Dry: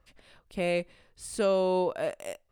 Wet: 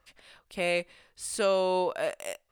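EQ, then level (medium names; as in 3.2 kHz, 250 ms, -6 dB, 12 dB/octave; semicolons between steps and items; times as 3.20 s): bass shelf 500 Hz -11.5 dB; +5.0 dB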